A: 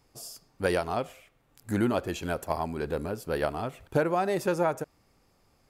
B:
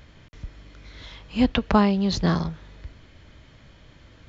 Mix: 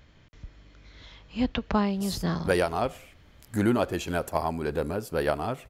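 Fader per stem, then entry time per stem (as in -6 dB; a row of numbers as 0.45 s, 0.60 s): +2.5 dB, -6.5 dB; 1.85 s, 0.00 s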